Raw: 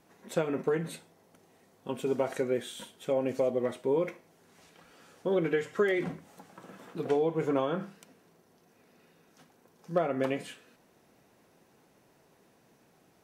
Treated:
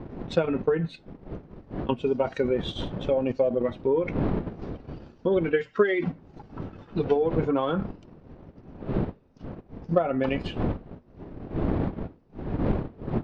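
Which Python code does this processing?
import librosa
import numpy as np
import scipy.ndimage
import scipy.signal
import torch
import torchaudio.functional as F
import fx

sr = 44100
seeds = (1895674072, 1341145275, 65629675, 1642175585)

p1 = fx.bin_expand(x, sr, power=1.5)
p2 = fx.dmg_wind(p1, sr, seeds[0], corner_hz=310.0, level_db=-44.0)
p3 = scipy.signal.sosfilt(scipy.signal.butter(4, 4400.0, 'lowpass', fs=sr, output='sos'), p2)
p4 = fx.over_compress(p3, sr, threshold_db=-38.0, ratio=-1.0)
p5 = p3 + F.gain(torch.from_numpy(p4), 1.0).numpy()
p6 = fx.transient(p5, sr, attack_db=4, sustain_db=-8)
y = F.gain(torch.from_numpy(p6), 3.5).numpy()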